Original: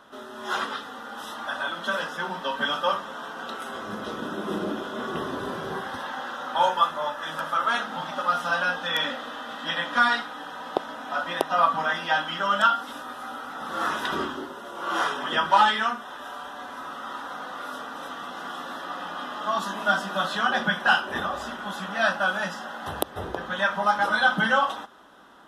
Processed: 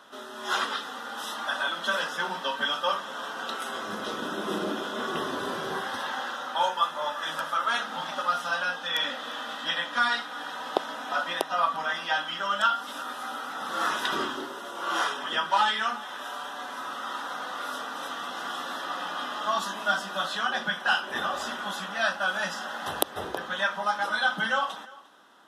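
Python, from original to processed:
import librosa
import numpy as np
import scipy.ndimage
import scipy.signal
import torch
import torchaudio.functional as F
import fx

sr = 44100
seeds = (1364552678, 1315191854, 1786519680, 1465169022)

p1 = fx.highpass(x, sr, hz=230.0, slope=6)
p2 = fx.high_shelf(p1, sr, hz=3000.0, db=8.5)
p3 = p2 + fx.echo_single(p2, sr, ms=350, db=-22.0, dry=0)
p4 = fx.rider(p3, sr, range_db=3, speed_s=0.5)
p5 = fx.high_shelf(p4, sr, hz=10000.0, db=-6.5)
y = F.gain(torch.from_numpy(p5), -3.0).numpy()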